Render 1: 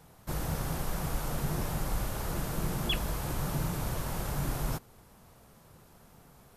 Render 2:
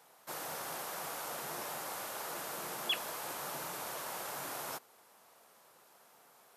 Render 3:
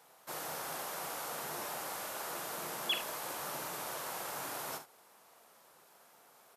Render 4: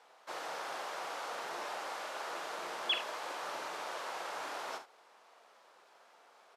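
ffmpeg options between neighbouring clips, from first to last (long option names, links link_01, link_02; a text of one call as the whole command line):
ffmpeg -i in.wav -af "highpass=550,volume=-1dB" out.wav
ffmpeg -i in.wav -af "aecho=1:1:46|72:0.316|0.2" out.wav
ffmpeg -i in.wav -af "highpass=390,lowpass=4600,volume=2dB" out.wav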